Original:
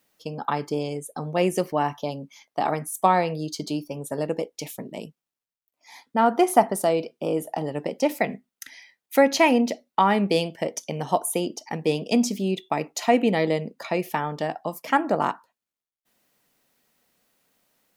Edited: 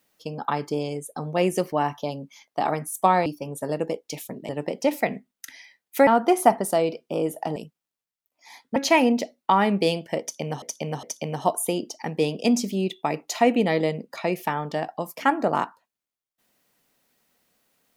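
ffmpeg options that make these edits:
-filter_complex "[0:a]asplit=8[a][b][c][d][e][f][g][h];[a]atrim=end=3.262[i];[b]atrim=start=3.748:end=4.982[j];[c]atrim=start=7.668:end=9.252[k];[d]atrim=start=6.178:end=7.672[l];[e]atrim=start=4.978:end=6.182[m];[f]atrim=start=9.248:end=11.112[n];[g]atrim=start=10.698:end=11.112[o];[h]atrim=start=10.698[p];[i][j]acrossfade=d=0.004:c1=hsin:c2=hsin[q];[q][k]acrossfade=d=0.004:c1=hsin:c2=hsin[r];[r][l]acrossfade=d=0.004:c1=hsin:c2=hsin[s];[s][m]acrossfade=d=0.004:c1=hsin:c2=hsin[t];[t][n]acrossfade=d=0.004:c1=hsin:c2=hsin[u];[u][o]acrossfade=d=0.004:c1=hsin:c2=hsin[v];[v][p]acrossfade=d=0.004:c1=hsin:c2=hsin"

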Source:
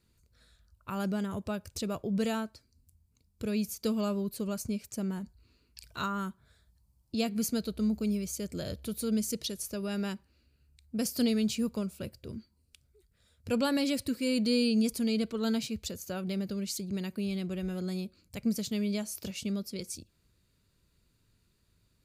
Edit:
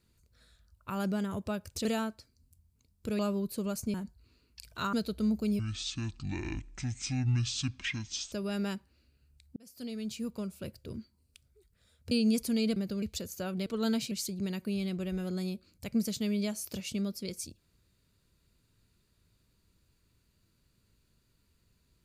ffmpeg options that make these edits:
-filter_complex "[0:a]asplit=13[a][b][c][d][e][f][g][h][i][j][k][l][m];[a]atrim=end=1.852[n];[b]atrim=start=2.208:end=3.552[o];[c]atrim=start=4.008:end=4.762[p];[d]atrim=start=5.128:end=6.122[q];[e]atrim=start=7.518:end=8.184[r];[f]atrim=start=8.18:end=9.71,asetpts=PTS-STARTPTS,asetrate=24696,aresample=44100,atrim=end_sample=120487,asetpts=PTS-STARTPTS[s];[g]atrim=start=9.706:end=10.95,asetpts=PTS-STARTPTS,afade=t=out:st=1.24:d=0.004:c=hsin[t];[h]atrim=start=10.95:end=13.502,asetpts=PTS-STARTPTS,afade=t=in:d=1.33[u];[i]atrim=start=14.618:end=15.272[v];[j]atrim=start=16.358:end=16.622[w];[k]atrim=start=15.718:end=16.362[x];[l]atrim=start=15.268:end=15.722[y];[m]atrim=start=16.618[z];[n][o]acrossfade=d=0.004:c1=hsin:c2=hsin[aa];[aa][p]acrossfade=d=0.004:c1=hsin:c2=hsin[ab];[ab][q]acrossfade=d=0.004:c1=hsin:c2=hsin[ac];[ac][r]acrossfade=d=0.004:c1=hsin:c2=hsin[ad];[ad][s]acrossfade=d=0.004:c1=hsin:c2=hsin[ae];[t][u]concat=n=2:v=0:a=1[af];[ae][af]acrossfade=d=0.004:c1=hsin:c2=hsin[ag];[ag][v]acrossfade=d=0.004:c1=hsin:c2=hsin[ah];[ah][w]acrossfade=d=0.004:c1=hsin:c2=hsin[ai];[ai][x]acrossfade=d=0.004:c1=hsin:c2=hsin[aj];[aj][y]acrossfade=d=0.004:c1=hsin:c2=hsin[ak];[ak][z]acrossfade=d=0.004:c1=hsin:c2=hsin"

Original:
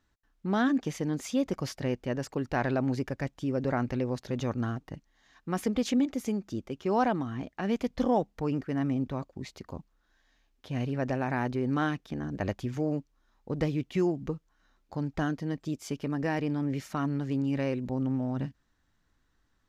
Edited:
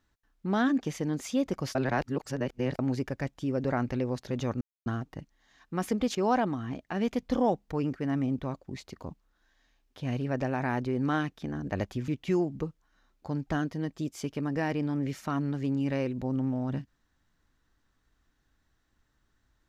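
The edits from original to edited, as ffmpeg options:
-filter_complex "[0:a]asplit=6[a][b][c][d][e][f];[a]atrim=end=1.752[g];[b]atrim=start=1.748:end=2.792,asetpts=PTS-STARTPTS,areverse[h];[c]atrim=start=2.788:end=4.61,asetpts=PTS-STARTPTS,afade=t=out:st=1.818:d=0.004:c=hsin,apad=pad_dur=0.25[i];[d]atrim=start=4.61:end=5.902,asetpts=PTS-STARTPTS,afade=t=in:d=0.004:c=hsin[j];[e]atrim=start=6.828:end=12.762[k];[f]atrim=start=13.748[l];[g][h]acrossfade=d=0.004:c1=hsin:c2=hsin[m];[i][j]concat=n=2:v=0:a=1[n];[m][n]acrossfade=d=0.004:c1=hsin:c2=hsin[o];[o][k]acrossfade=d=0.004:c1=hsin:c2=hsin[p];[p][l]acrossfade=d=0.004:c1=hsin:c2=hsin"

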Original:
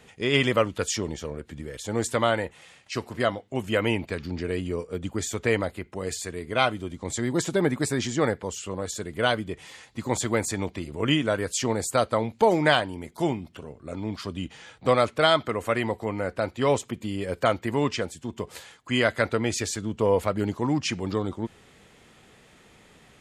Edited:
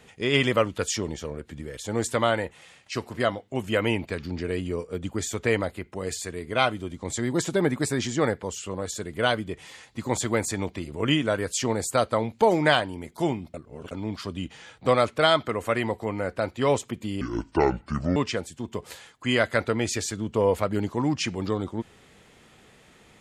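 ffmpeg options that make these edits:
-filter_complex "[0:a]asplit=5[a][b][c][d][e];[a]atrim=end=13.542[f];[b]atrim=start=13.538:end=13.912,asetpts=PTS-STARTPTS,areverse[g];[c]atrim=start=13.908:end=17.214[h];[d]atrim=start=17.21:end=17.81,asetpts=PTS-STARTPTS,asetrate=27783,aresample=44100[i];[e]atrim=start=17.806[j];[f][g]acrossfade=d=0.004:c1=hsin:c2=hsin[k];[k][h]acrossfade=d=0.004:c1=hsin:c2=hsin[l];[l][i]acrossfade=d=0.004:c1=hsin:c2=hsin[m];[m][j]acrossfade=d=0.004:c1=hsin:c2=hsin"

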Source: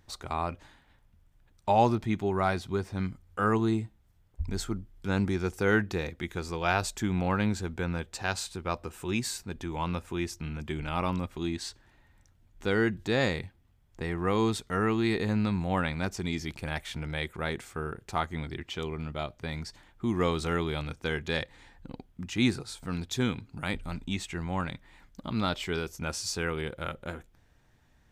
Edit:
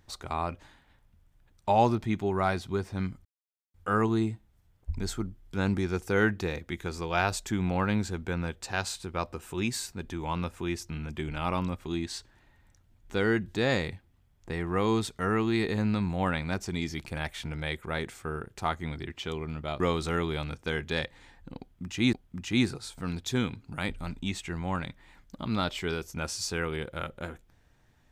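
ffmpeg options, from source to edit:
-filter_complex "[0:a]asplit=4[a][b][c][d];[a]atrim=end=3.25,asetpts=PTS-STARTPTS,afade=t=out:st=3.246:d=0.004:c=hsin,apad=pad_dur=0.49[e];[b]atrim=start=3.25:end=19.312,asetpts=PTS-STARTPTS,afade=t=in:d=0.004:c=hsin[f];[c]atrim=start=20.178:end=22.512[g];[d]atrim=start=21.978[h];[e][f]concat=n=2:v=0:a=1[i];[i][g]acrossfade=d=0.004:c1=hsin:c2=hsin[j];[j][h]acrossfade=d=0.004:c1=hsin:c2=hsin"

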